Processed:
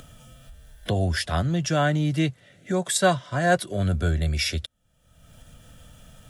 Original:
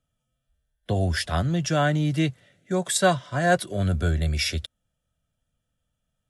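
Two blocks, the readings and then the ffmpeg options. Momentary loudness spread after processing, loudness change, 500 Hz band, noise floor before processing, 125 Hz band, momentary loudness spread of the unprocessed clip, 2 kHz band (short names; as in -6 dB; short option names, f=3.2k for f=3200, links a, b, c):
7 LU, 0.0 dB, 0.0 dB, -80 dBFS, 0.0 dB, 7 LU, 0.0 dB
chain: -af "acompressor=mode=upward:threshold=-24dB:ratio=2.5"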